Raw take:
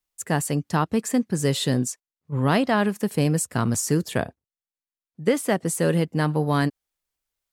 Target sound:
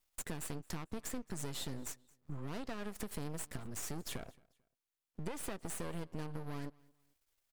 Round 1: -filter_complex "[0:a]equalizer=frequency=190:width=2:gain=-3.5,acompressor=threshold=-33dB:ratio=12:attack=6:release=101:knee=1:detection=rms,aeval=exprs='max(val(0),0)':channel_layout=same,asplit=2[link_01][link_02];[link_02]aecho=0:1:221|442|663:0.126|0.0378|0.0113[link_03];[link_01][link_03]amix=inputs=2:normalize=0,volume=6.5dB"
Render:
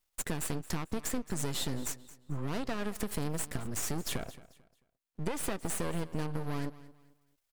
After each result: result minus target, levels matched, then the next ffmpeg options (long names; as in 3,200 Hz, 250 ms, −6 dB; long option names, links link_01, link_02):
downward compressor: peak gain reduction −7.5 dB; echo-to-direct +7.5 dB
-filter_complex "[0:a]equalizer=frequency=190:width=2:gain=-3.5,acompressor=threshold=-41dB:ratio=12:attack=6:release=101:knee=1:detection=rms,aeval=exprs='max(val(0),0)':channel_layout=same,asplit=2[link_01][link_02];[link_02]aecho=0:1:221|442|663:0.126|0.0378|0.0113[link_03];[link_01][link_03]amix=inputs=2:normalize=0,volume=6.5dB"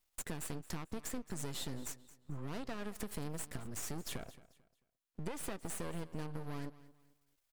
echo-to-direct +7.5 dB
-filter_complex "[0:a]equalizer=frequency=190:width=2:gain=-3.5,acompressor=threshold=-41dB:ratio=12:attack=6:release=101:knee=1:detection=rms,aeval=exprs='max(val(0),0)':channel_layout=same,asplit=2[link_01][link_02];[link_02]aecho=0:1:221|442:0.0531|0.0159[link_03];[link_01][link_03]amix=inputs=2:normalize=0,volume=6.5dB"